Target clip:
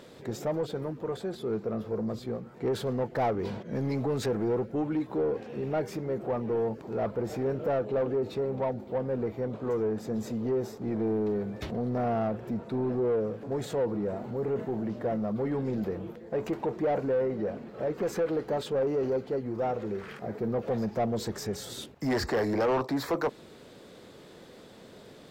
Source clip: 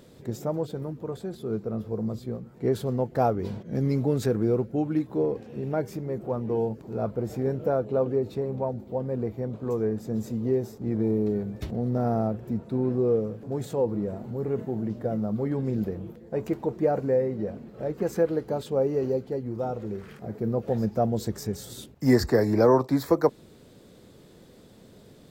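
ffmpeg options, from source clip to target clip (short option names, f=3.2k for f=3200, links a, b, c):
-filter_complex "[0:a]asoftclip=type=tanh:threshold=-21.5dB,asplit=2[a][b];[b]highpass=f=720:p=1,volume=13dB,asoftclip=type=tanh:threshold=-21.5dB[c];[a][c]amix=inputs=2:normalize=0,lowpass=f=3.1k:p=1,volume=-6dB"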